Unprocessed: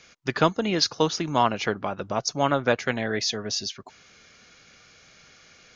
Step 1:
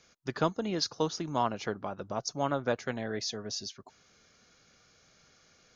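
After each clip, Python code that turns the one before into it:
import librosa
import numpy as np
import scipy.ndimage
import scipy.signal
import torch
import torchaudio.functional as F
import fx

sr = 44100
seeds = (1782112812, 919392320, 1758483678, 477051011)

y = fx.peak_eq(x, sr, hz=2400.0, db=-7.0, octaves=1.2)
y = y * 10.0 ** (-7.0 / 20.0)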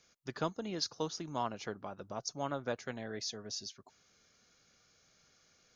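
y = fx.high_shelf(x, sr, hz=4900.0, db=5.5)
y = y * 10.0 ** (-7.0 / 20.0)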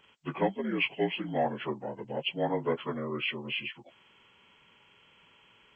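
y = fx.partial_stretch(x, sr, pct=78)
y = y * 10.0 ** (8.5 / 20.0)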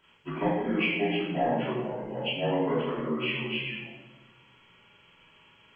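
y = fx.room_shoebox(x, sr, seeds[0], volume_m3=540.0, walls='mixed', distance_m=2.9)
y = y * 10.0 ** (-5.0 / 20.0)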